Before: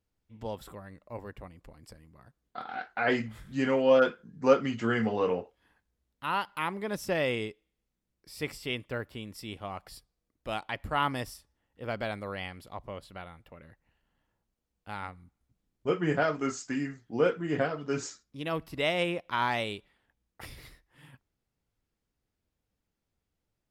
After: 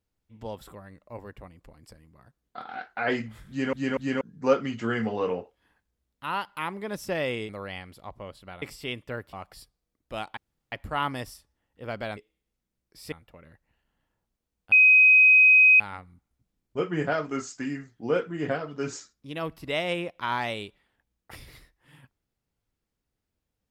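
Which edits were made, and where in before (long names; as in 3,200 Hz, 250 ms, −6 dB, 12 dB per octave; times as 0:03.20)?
0:03.49: stutter in place 0.24 s, 3 plays
0:07.49–0:08.44: swap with 0:12.17–0:13.30
0:09.15–0:09.68: remove
0:10.72: splice in room tone 0.35 s
0:14.90: insert tone 2,520 Hz −12.5 dBFS 1.08 s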